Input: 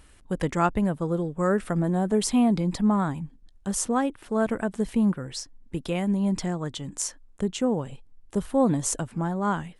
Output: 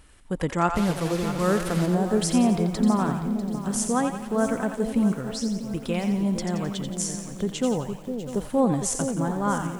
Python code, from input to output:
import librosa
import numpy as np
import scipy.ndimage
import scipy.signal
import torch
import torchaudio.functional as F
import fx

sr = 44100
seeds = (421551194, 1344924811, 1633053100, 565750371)

y = fx.delta_mod(x, sr, bps=64000, step_db=-28.5, at=(0.73, 1.86))
y = fx.echo_split(y, sr, split_hz=600.0, low_ms=460, high_ms=87, feedback_pct=52, wet_db=-7.0)
y = fx.echo_crushed(y, sr, ms=646, feedback_pct=35, bits=7, wet_db=-12.5)